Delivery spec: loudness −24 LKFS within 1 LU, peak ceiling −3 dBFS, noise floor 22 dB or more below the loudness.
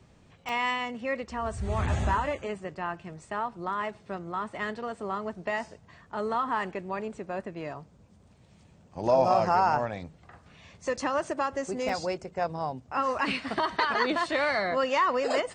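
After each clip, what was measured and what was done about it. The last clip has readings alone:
number of dropouts 2; longest dropout 2.9 ms; integrated loudness −29.5 LKFS; sample peak −11.0 dBFS; target loudness −24.0 LKFS
→ repair the gap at 0:00.49/0:11.89, 2.9 ms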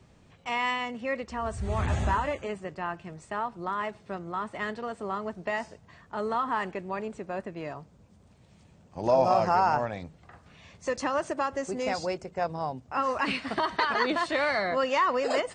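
number of dropouts 0; integrated loudness −29.5 LKFS; sample peak −11.0 dBFS; target loudness −24.0 LKFS
→ level +5.5 dB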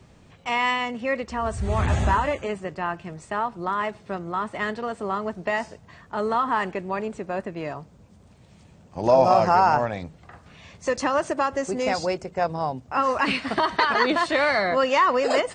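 integrated loudness −24.0 LKFS; sample peak −5.5 dBFS; background noise floor −52 dBFS

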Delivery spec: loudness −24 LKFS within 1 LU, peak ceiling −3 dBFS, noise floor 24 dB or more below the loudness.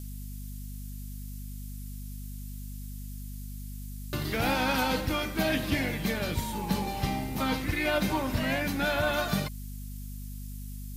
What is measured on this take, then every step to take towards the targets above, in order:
mains hum 50 Hz; hum harmonics up to 250 Hz; level of the hum −37 dBFS; background noise floor −39 dBFS; target noise floor −53 dBFS; integrated loudness −29.0 LKFS; sample peak −15.5 dBFS; target loudness −24.0 LKFS
→ hum removal 50 Hz, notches 5
noise reduction from a noise print 14 dB
level +5 dB

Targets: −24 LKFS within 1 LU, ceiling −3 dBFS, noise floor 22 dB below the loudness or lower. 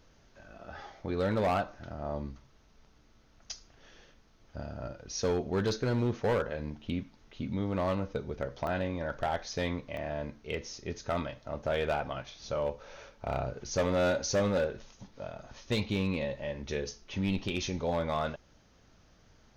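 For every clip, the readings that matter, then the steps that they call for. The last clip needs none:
share of clipped samples 1.5%; peaks flattened at −23.5 dBFS; number of dropouts 3; longest dropout 1.1 ms; integrated loudness −33.5 LKFS; sample peak −23.5 dBFS; target loudness −24.0 LKFS
→ clipped peaks rebuilt −23.5 dBFS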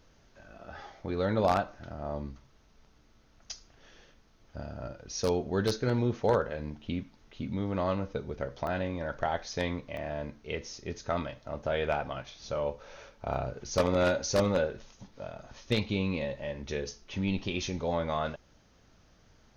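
share of clipped samples 0.0%; number of dropouts 3; longest dropout 1.1 ms
→ repair the gap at 0:08.67/0:09.97/0:13.34, 1.1 ms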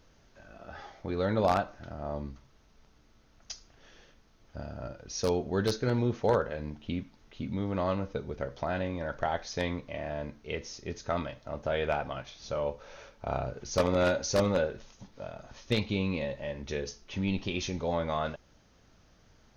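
number of dropouts 0; integrated loudness −32.5 LKFS; sample peak −14.5 dBFS; target loudness −24.0 LKFS
→ level +8.5 dB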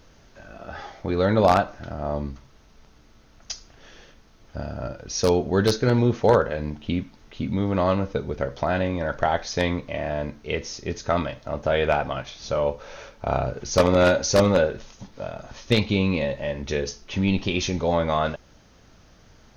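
integrated loudness −24.0 LKFS; sample peak −6.0 dBFS; background noise floor −54 dBFS

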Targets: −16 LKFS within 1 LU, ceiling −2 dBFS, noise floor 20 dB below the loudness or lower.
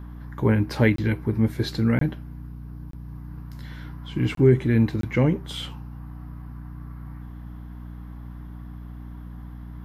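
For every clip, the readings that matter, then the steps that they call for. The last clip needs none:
number of dropouts 5; longest dropout 23 ms; mains hum 60 Hz; hum harmonics up to 300 Hz; level of the hum −37 dBFS; integrated loudness −23.0 LKFS; sample peak −4.0 dBFS; target loudness −16.0 LKFS
→ repair the gap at 0:00.96/0:01.99/0:02.91/0:04.35/0:05.01, 23 ms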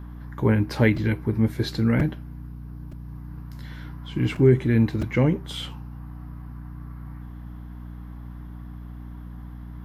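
number of dropouts 0; mains hum 60 Hz; hum harmonics up to 300 Hz; level of the hum −37 dBFS
→ mains-hum notches 60/120/180/240/300 Hz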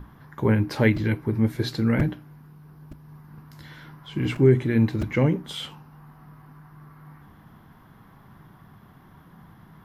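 mains hum none found; integrated loudness −23.5 LKFS; sample peak −4.5 dBFS; target loudness −16.0 LKFS
→ level +7.5 dB
brickwall limiter −2 dBFS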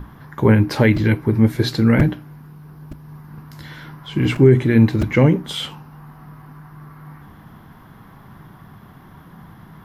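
integrated loudness −16.5 LKFS; sample peak −2.0 dBFS; background noise floor −45 dBFS

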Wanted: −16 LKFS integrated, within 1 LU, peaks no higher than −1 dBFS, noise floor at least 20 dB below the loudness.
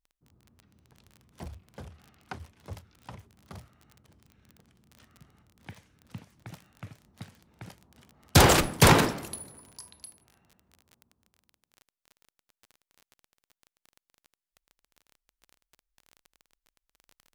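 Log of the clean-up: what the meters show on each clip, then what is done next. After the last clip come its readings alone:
crackle rate 23 per second; integrated loudness −22.0 LKFS; sample peak −7.5 dBFS; target loudness −16.0 LKFS
→ click removal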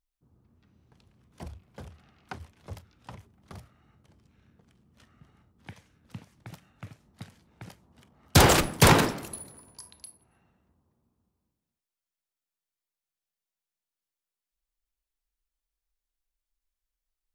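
crackle rate 0.17 per second; integrated loudness −21.0 LKFS; sample peak −7.5 dBFS; target loudness −16.0 LKFS
→ level +5 dB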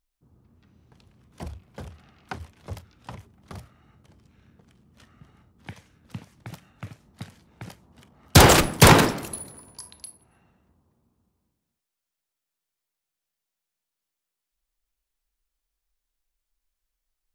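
integrated loudness −16.0 LKFS; sample peak −2.5 dBFS; background noise floor −86 dBFS

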